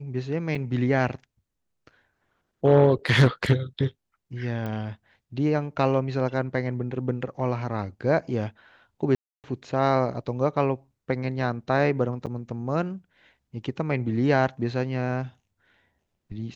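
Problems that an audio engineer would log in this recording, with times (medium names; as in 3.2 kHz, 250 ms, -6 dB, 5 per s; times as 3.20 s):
0.55 s: dropout 4.1 ms
4.66 s: pop -21 dBFS
9.15–9.44 s: dropout 288 ms
12.26–12.27 s: dropout 8.2 ms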